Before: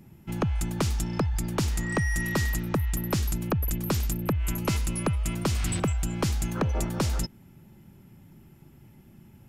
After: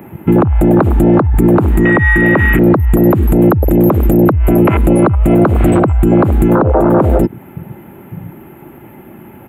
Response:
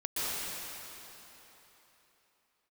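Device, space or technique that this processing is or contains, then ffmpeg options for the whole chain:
mastering chain: -filter_complex "[0:a]highpass=f=80:p=1,afwtdn=0.02,firequalizer=gain_entry='entry(150,0);entry(320,11);entry(2400,0);entry(5400,-28);entry(7700,-13);entry(13000,1)':delay=0.05:min_phase=1,equalizer=f=750:t=o:w=0.77:g=1.5,acrossover=split=240|900[a][b][c];[a]acompressor=threshold=-30dB:ratio=4[d];[b]acompressor=threshold=-24dB:ratio=4[e];[c]acompressor=threshold=-41dB:ratio=4[f];[d][e][f]amix=inputs=3:normalize=0,acompressor=threshold=-36dB:ratio=2,tiltshelf=f=820:g=-4,alimiter=level_in=34dB:limit=-1dB:release=50:level=0:latency=1,volume=-1dB"

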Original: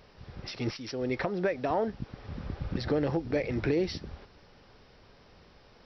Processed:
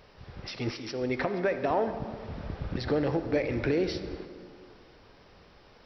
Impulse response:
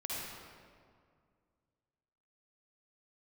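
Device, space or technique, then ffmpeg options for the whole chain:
filtered reverb send: -filter_complex "[0:a]asplit=2[a][b];[b]highpass=f=190:w=0.5412,highpass=f=190:w=1.3066,lowpass=5k[c];[1:a]atrim=start_sample=2205[d];[c][d]afir=irnorm=-1:irlink=0,volume=-9dB[e];[a][e]amix=inputs=2:normalize=0"

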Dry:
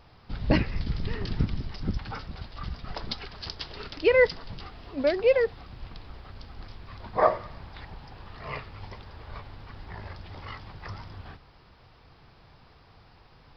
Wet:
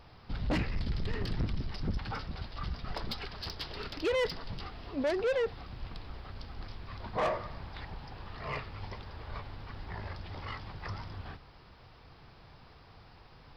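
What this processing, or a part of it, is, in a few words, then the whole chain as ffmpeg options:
saturation between pre-emphasis and de-emphasis: -af "highshelf=f=4.6k:g=10.5,asoftclip=type=tanh:threshold=-26dB,highshelf=f=4.6k:g=-10.5"

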